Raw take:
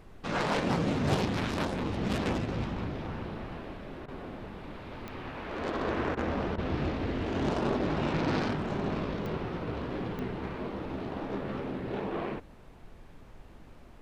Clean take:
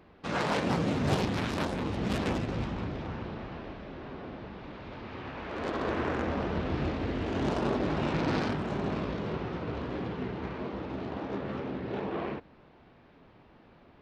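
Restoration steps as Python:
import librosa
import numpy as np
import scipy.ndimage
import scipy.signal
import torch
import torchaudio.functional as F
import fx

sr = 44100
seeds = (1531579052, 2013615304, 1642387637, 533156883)

y = fx.fix_declick_ar(x, sr, threshold=10.0)
y = fx.fix_interpolate(y, sr, at_s=(4.06, 6.15, 6.56), length_ms=20.0)
y = fx.noise_reduce(y, sr, print_start_s=12.42, print_end_s=12.92, reduce_db=8.0)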